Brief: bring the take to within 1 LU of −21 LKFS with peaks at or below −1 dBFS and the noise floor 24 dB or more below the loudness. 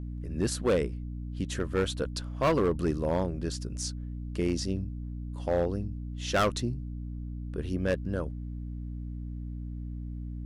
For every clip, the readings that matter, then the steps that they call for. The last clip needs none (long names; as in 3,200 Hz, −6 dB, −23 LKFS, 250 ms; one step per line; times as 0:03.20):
share of clipped samples 1.1%; peaks flattened at −20.0 dBFS; mains hum 60 Hz; hum harmonics up to 300 Hz; level of the hum −35 dBFS; integrated loudness −32.0 LKFS; sample peak −20.0 dBFS; target loudness −21.0 LKFS
→ clipped peaks rebuilt −20 dBFS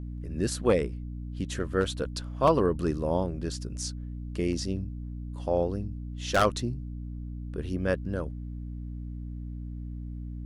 share of clipped samples 0.0%; mains hum 60 Hz; hum harmonics up to 300 Hz; level of the hum −34 dBFS
→ mains-hum notches 60/120/180/240/300 Hz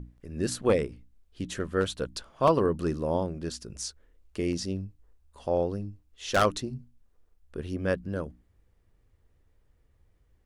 mains hum none found; integrated loudness −30.0 LKFS; sample peak −11.0 dBFS; target loudness −21.0 LKFS
→ level +9 dB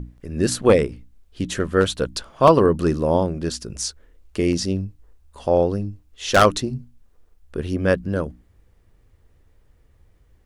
integrated loudness −21.0 LKFS; sample peak −2.0 dBFS; background noise floor −58 dBFS